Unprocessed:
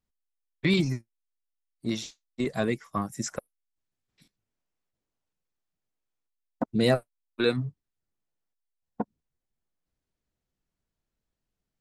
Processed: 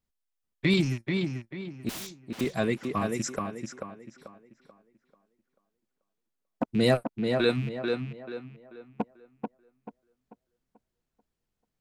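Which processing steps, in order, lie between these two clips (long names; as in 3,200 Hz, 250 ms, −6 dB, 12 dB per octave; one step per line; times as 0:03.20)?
loose part that buzzes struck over −36 dBFS, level −33 dBFS
0:01.89–0:02.41: wrap-around overflow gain 33.5 dB
tape delay 438 ms, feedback 39%, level −3 dB, low-pass 2,700 Hz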